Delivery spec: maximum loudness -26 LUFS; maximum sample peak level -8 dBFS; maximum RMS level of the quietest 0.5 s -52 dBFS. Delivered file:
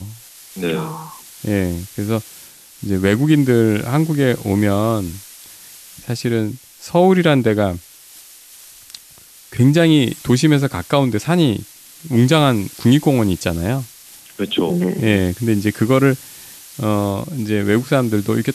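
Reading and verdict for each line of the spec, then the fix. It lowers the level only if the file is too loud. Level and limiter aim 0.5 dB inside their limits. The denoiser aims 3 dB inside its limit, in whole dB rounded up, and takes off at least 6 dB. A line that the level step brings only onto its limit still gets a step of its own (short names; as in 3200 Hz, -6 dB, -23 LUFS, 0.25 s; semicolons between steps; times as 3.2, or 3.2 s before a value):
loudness -17.0 LUFS: fail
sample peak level -3.0 dBFS: fail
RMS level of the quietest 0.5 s -44 dBFS: fail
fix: gain -9.5 dB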